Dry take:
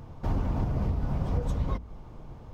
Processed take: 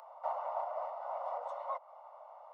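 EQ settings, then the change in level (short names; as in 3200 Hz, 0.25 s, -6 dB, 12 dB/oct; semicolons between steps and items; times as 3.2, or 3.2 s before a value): polynomial smoothing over 65 samples; steep high-pass 570 Hz 96 dB/oct; +5.5 dB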